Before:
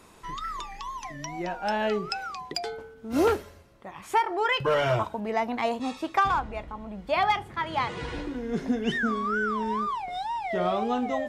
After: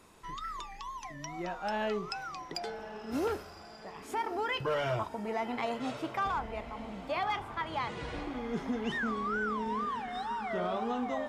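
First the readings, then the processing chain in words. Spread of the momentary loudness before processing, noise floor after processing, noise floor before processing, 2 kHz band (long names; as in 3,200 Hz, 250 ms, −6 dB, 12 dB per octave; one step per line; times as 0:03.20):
12 LU, −49 dBFS, −51 dBFS, −6.5 dB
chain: brickwall limiter −19 dBFS, peak gain reduction 7.5 dB
feedback delay with all-pass diffusion 1,142 ms, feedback 42%, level −11.5 dB
level −5.5 dB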